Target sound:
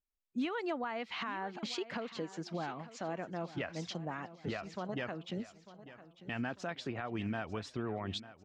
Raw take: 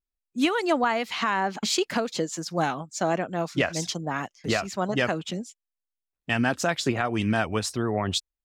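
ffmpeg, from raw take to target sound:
-filter_complex "[0:a]lowpass=3.4k,alimiter=limit=-24dB:level=0:latency=1:release=415,asplit=2[a][b];[b]aecho=0:1:897|1794|2691|3588:0.168|0.0755|0.034|0.0153[c];[a][c]amix=inputs=2:normalize=0,volume=-4dB"

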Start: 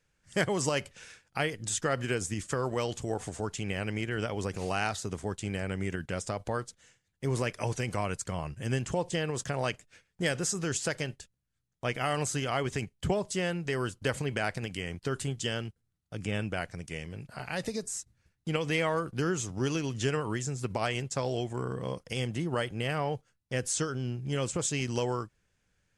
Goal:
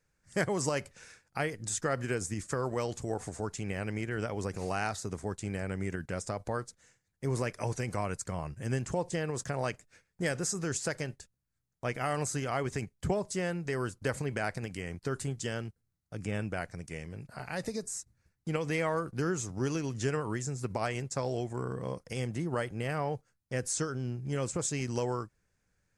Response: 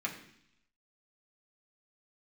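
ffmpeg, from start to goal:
-af "equalizer=f=3.1k:t=o:w=0.55:g=-9,volume=-1.5dB"

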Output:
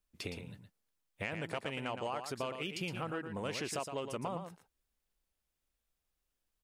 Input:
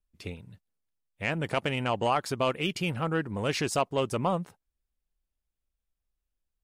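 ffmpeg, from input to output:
-filter_complex "[0:a]lowshelf=f=120:g=-10,acompressor=threshold=-43dB:ratio=4,asplit=2[a][b];[b]aecho=0:1:115:0.422[c];[a][c]amix=inputs=2:normalize=0,volume=4.5dB"

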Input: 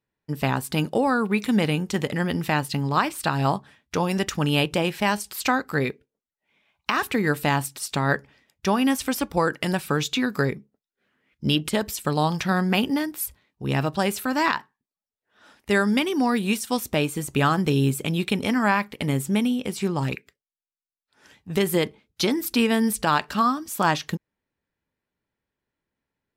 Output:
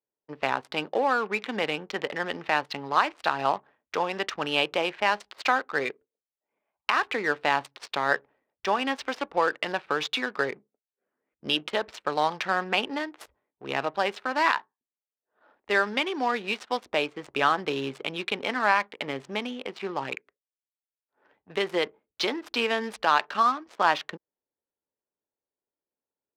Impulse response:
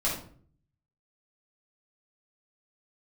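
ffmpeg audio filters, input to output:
-filter_complex "[0:a]adynamicsmooth=sensitivity=8:basefreq=690,acrossover=split=380 5300:gain=0.0794 1 0.158[a][b][c];[a][b][c]amix=inputs=3:normalize=0"

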